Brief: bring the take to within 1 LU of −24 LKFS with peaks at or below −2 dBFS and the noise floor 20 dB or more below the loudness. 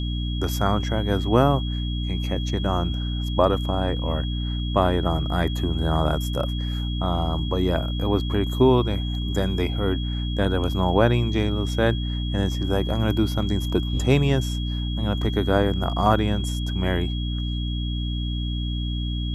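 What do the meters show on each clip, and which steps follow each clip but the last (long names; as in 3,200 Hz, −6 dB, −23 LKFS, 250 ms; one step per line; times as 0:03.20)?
mains hum 60 Hz; hum harmonics up to 300 Hz; level of the hum −24 dBFS; interfering tone 3,300 Hz; level of the tone −35 dBFS; integrated loudness −24.0 LKFS; sample peak −3.5 dBFS; target loudness −24.0 LKFS
→ mains-hum notches 60/120/180/240/300 Hz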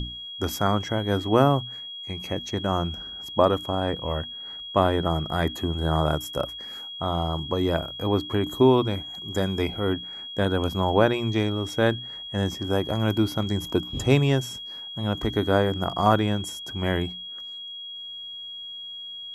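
mains hum none found; interfering tone 3,300 Hz; level of the tone −35 dBFS
→ notch filter 3,300 Hz, Q 30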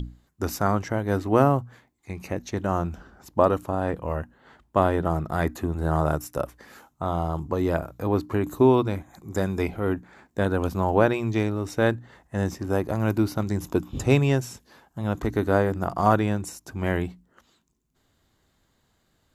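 interfering tone none found; integrated loudness −25.5 LKFS; sample peak −4.5 dBFS; target loudness −24.0 LKFS
→ level +1.5 dB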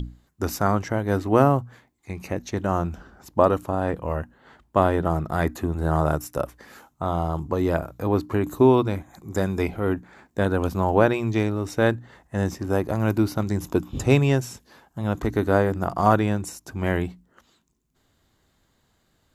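integrated loudness −24.0 LKFS; sample peak −3.0 dBFS; background noise floor −68 dBFS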